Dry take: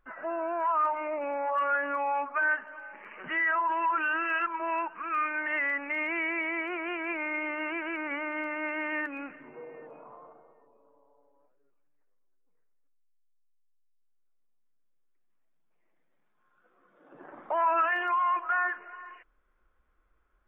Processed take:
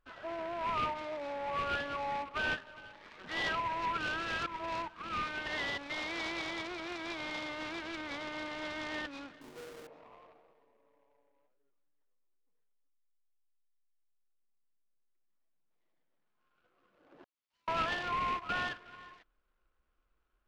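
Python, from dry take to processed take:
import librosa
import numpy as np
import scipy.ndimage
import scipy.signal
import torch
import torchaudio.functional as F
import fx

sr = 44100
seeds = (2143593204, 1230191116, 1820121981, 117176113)

y = fx.halfwave_hold(x, sr, at=(9.41, 9.87))
y = fx.cheby2_highpass(y, sr, hz=1700.0, order=4, stop_db=50, at=(17.24, 17.68))
y = fx.noise_mod_delay(y, sr, seeds[0], noise_hz=1200.0, depth_ms=0.057)
y = y * librosa.db_to_amplitude(-7.0)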